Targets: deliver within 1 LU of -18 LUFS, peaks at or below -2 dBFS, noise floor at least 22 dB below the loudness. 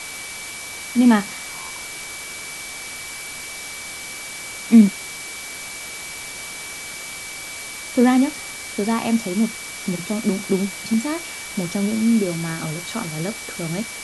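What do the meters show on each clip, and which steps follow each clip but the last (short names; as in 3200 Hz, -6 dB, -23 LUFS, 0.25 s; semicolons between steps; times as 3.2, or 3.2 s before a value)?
steady tone 2300 Hz; tone level -35 dBFS; noise floor -34 dBFS; noise floor target -45 dBFS; loudness -23.0 LUFS; peak -2.0 dBFS; loudness target -18.0 LUFS
-> notch 2300 Hz, Q 30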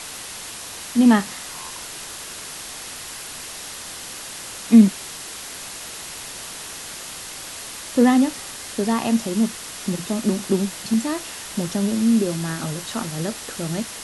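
steady tone none; noise floor -35 dBFS; noise floor target -46 dBFS
-> denoiser 11 dB, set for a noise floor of -35 dBFS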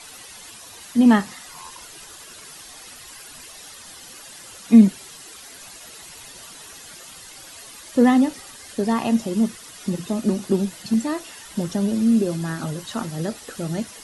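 noise floor -42 dBFS; noise floor target -43 dBFS
-> denoiser 6 dB, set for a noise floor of -42 dBFS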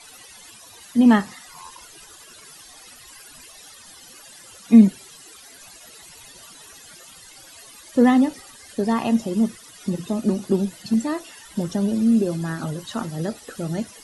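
noise floor -46 dBFS; loudness -21.0 LUFS; peak -2.5 dBFS; loudness target -18.0 LUFS
-> gain +3 dB; limiter -2 dBFS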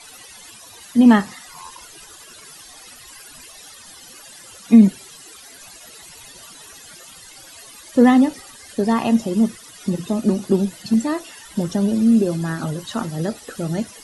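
loudness -18.5 LUFS; peak -2.0 dBFS; noise floor -43 dBFS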